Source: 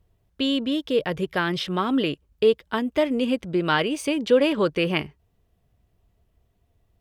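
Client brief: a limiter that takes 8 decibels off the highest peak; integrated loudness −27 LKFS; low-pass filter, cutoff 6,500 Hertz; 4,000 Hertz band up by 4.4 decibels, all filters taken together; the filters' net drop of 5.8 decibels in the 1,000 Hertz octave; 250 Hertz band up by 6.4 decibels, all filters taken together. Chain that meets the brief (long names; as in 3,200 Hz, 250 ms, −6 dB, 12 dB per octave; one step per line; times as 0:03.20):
low-pass filter 6,500 Hz
parametric band 250 Hz +8 dB
parametric band 1,000 Hz −8.5 dB
parametric band 4,000 Hz +7.5 dB
level −4.5 dB
brickwall limiter −17.5 dBFS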